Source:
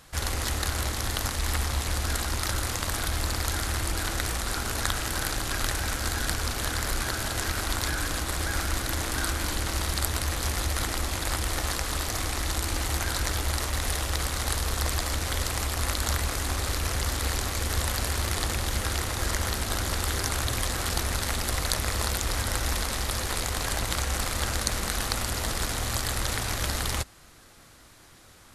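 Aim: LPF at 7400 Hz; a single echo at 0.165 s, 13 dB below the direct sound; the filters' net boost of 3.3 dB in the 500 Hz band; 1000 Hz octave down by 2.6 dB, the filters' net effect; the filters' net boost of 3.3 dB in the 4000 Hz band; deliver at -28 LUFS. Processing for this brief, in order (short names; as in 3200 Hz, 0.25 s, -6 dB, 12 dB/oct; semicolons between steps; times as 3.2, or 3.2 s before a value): LPF 7400 Hz; bell 500 Hz +5.5 dB; bell 1000 Hz -5.5 dB; bell 4000 Hz +4.5 dB; echo 0.165 s -13 dB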